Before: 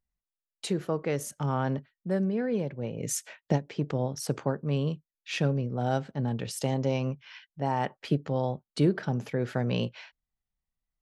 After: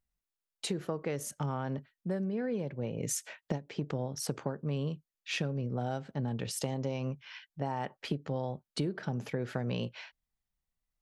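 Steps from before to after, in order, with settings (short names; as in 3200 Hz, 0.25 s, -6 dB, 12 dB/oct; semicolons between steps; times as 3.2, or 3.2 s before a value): compressor, threshold -30 dBFS, peak gain reduction 11 dB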